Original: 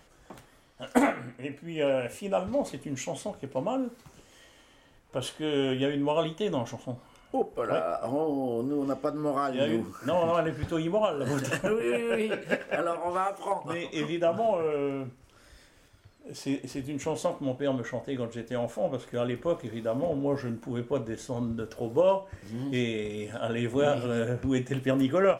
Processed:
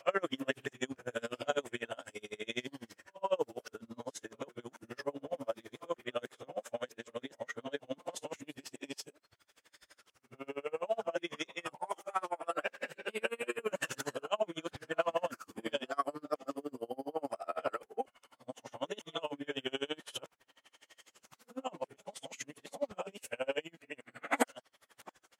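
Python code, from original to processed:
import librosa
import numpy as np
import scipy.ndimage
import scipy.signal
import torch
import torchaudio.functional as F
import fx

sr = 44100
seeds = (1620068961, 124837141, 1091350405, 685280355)

y = x[::-1].copy()
y = fx.highpass(y, sr, hz=1000.0, slope=6)
y = y * 10.0 ** (-32 * (0.5 - 0.5 * np.cos(2.0 * np.pi * 12.0 * np.arange(len(y)) / sr)) / 20.0)
y = y * 10.0 ** (3.0 / 20.0)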